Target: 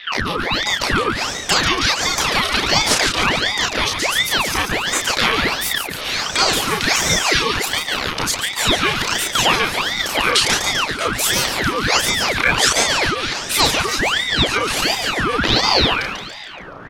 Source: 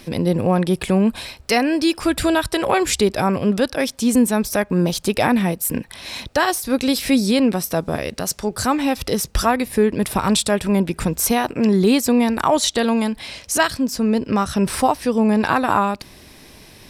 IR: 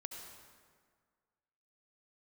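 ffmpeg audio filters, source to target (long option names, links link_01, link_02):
-filter_complex "[0:a]afftfilt=real='real(if(between(b,1,1008),(2*floor((b-1)/48)+1)*48-b,b),0)':imag='imag(if(between(b,1,1008),(2*floor((b-1)/48)+1)*48-b,b),0)*if(between(b,1,1008),-1,1)':win_size=2048:overlap=0.75,acrossover=split=120|1600[link_01][link_02][link_03];[link_01]aeval=exprs='sgn(val(0))*max(abs(val(0))-0.00126,0)':channel_layout=same[link_04];[link_02]acompressor=threshold=-31dB:ratio=16[link_05];[link_03]agate=range=-44dB:threshold=-44dB:ratio=16:detection=peak[link_06];[link_04][link_05][link_06]amix=inputs=3:normalize=0,aeval=exprs='val(0)+0.00794*(sin(2*PI*60*n/s)+sin(2*PI*2*60*n/s)/2+sin(2*PI*3*60*n/s)/3+sin(2*PI*4*60*n/s)/4+sin(2*PI*5*60*n/s)/5)':channel_layout=same,acrossover=split=200 5700:gain=0.0891 1 0.224[link_07][link_08][link_09];[link_07][link_08][link_09]amix=inputs=3:normalize=0,asplit=2[link_10][link_11];[link_11]adelay=32,volume=-3dB[link_12];[link_10][link_12]amix=inputs=2:normalize=0,asplit=2[link_13][link_14];[link_14]asplit=6[link_15][link_16][link_17][link_18][link_19][link_20];[link_15]adelay=142,afreqshift=30,volume=-6.5dB[link_21];[link_16]adelay=284,afreqshift=60,volume=-12.9dB[link_22];[link_17]adelay=426,afreqshift=90,volume=-19.3dB[link_23];[link_18]adelay=568,afreqshift=120,volume=-25.6dB[link_24];[link_19]adelay=710,afreqshift=150,volume=-32dB[link_25];[link_20]adelay=852,afreqshift=180,volume=-38.4dB[link_26];[link_21][link_22][link_23][link_24][link_25][link_26]amix=inputs=6:normalize=0[link_27];[link_13][link_27]amix=inputs=2:normalize=0,adynamicequalizer=threshold=0.00562:dfrequency=7700:dqfactor=3.4:tfrequency=7700:tqfactor=3.4:attack=5:release=100:ratio=0.375:range=1.5:mode=cutabove:tftype=bell,alimiter=level_in=11.5dB:limit=-1dB:release=50:level=0:latency=1,aeval=exprs='val(0)*sin(2*PI*1600*n/s+1600*0.8/1.4*sin(2*PI*1.4*n/s))':channel_layout=same"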